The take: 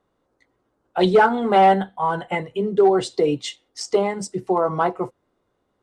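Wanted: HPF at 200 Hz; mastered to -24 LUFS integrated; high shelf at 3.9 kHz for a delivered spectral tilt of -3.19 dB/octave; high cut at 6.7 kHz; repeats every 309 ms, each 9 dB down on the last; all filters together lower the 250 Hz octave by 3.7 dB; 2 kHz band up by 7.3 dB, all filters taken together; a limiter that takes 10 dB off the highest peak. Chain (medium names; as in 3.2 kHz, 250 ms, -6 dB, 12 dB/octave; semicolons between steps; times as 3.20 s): high-pass 200 Hz; low-pass 6.7 kHz; peaking EQ 250 Hz -4 dB; peaking EQ 2 kHz +8 dB; treble shelf 3.9 kHz +9 dB; peak limiter -13 dBFS; feedback delay 309 ms, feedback 35%, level -9 dB; trim -0.5 dB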